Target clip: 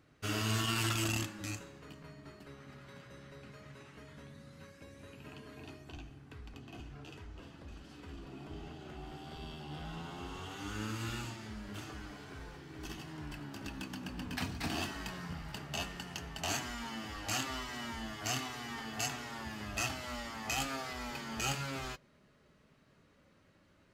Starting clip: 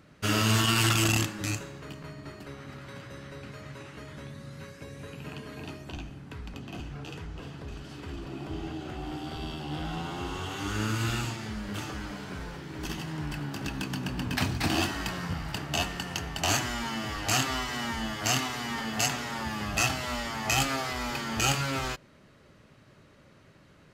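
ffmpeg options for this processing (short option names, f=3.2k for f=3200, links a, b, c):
-af "flanger=delay=2.6:depth=2.3:regen=-59:speed=0.16:shape=sinusoidal,volume=-5dB"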